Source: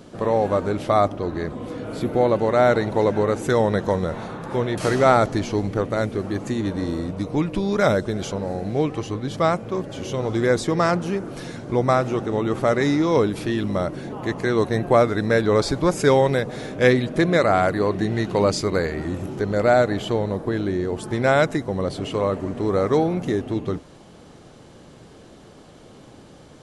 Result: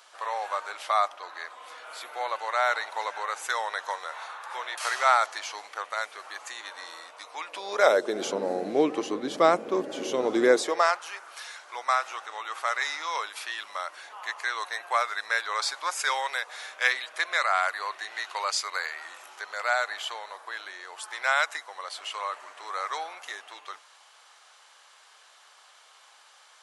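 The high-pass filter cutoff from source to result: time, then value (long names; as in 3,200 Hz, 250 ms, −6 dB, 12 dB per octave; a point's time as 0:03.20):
high-pass filter 24 dB per octave
0:07.37 910 Hz
0:08.27 270 Hz
0:10.48 270 Hz
0:10.99 970 Hz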